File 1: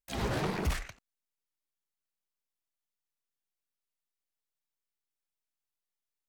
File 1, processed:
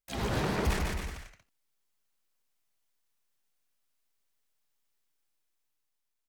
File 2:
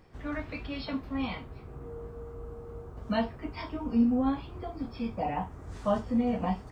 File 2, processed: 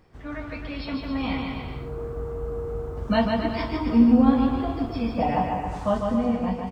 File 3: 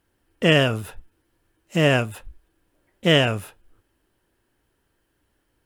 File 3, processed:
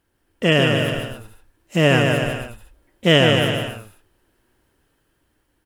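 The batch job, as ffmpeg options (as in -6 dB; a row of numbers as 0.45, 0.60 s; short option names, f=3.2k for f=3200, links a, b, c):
-af "dynaudnorm=f=260:g=9:m=7dB,aecho=1:1:150|270|366|442.8|504.2:0.631|0.398|0.251|0.158|0.1"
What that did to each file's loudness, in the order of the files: +1.5, +7.5, +2.5 LU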